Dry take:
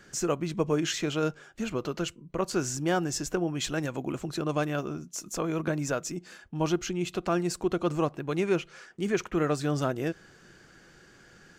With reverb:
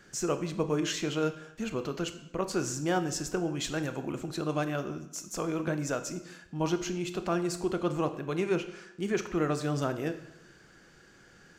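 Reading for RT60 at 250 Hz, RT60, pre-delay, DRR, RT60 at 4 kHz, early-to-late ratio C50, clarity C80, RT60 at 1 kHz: 0.85 s, 0.85 s, 25 ms, 9.0 dB, 0.75 s, 12.0 dB, 14.0 dB, 0.80 s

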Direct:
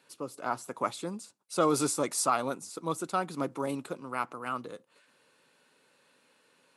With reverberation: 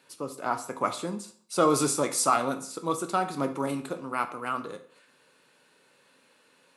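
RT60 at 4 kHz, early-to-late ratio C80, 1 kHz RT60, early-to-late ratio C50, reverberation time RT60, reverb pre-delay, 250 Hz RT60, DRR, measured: 0.45 s, 16.5 dB, 0.50 s, 12.0 dB, 0.50 s, 15 ms, 0.50 s, 7.0 dB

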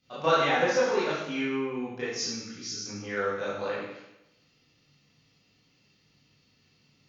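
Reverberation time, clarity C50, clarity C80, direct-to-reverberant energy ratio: 0.90 s, −0.5 dB, 2.5 dB, −10.5 dB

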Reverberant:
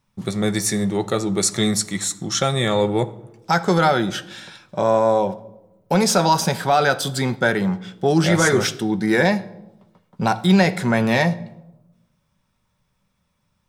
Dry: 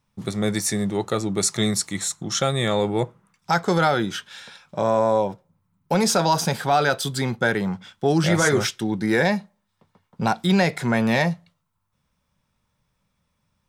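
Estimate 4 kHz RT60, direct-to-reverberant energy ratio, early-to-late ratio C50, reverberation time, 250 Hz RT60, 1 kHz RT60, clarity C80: 0.60 s, 11.0 dB, 18.0 dB, 1.0 s, 1.2 s, 0.90 s, 20.5 dB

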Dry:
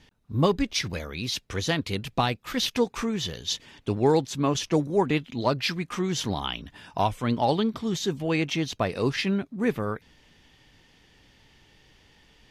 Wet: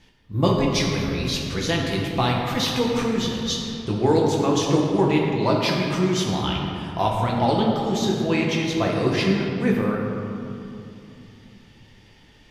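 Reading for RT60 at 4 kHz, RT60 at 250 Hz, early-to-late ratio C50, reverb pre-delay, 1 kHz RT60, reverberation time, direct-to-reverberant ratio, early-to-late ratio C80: 1.5 s, 3.6 s, 1.5 dB, 6 ms, 2.6 s, 2.7 s, −2.5 dB, 2.5 dB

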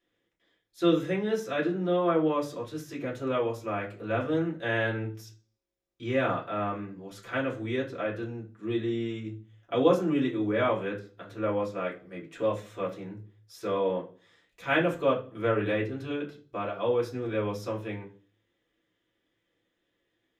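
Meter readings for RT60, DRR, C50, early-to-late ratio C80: 0.40 s, −5.0 dB, 12.0 dB, 17.0 dB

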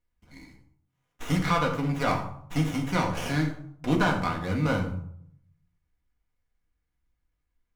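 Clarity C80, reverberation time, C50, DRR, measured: 11.0 dB, 0.65 s, 7.5 dB, 0.0 dB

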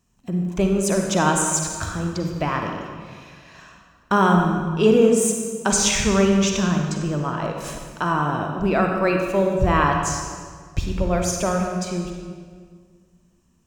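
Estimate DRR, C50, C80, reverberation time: 2.0 dB, 2.5 dB, 4.5 dB, 1.8 s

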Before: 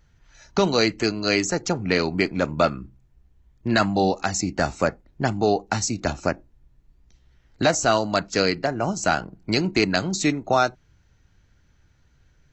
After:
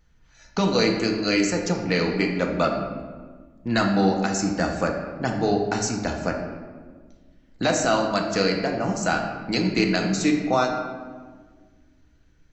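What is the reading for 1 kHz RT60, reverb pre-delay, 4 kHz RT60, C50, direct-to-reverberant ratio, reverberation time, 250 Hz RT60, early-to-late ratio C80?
1.4 s, 3 ms, 0.90 s, 4.5 dB, 1.5 dB, 1.5 s, 2.3 s, 6.5 dB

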